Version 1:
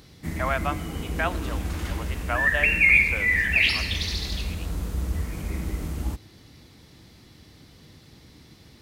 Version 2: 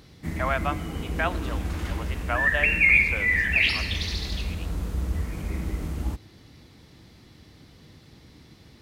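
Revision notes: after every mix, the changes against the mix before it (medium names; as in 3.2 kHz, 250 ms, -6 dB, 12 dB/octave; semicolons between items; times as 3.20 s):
background: add treble shelf 5 kHz -5.5 dB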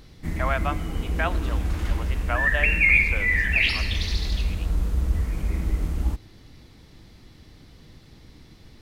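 background: remove high-pass 71 Hz 12 dB/octave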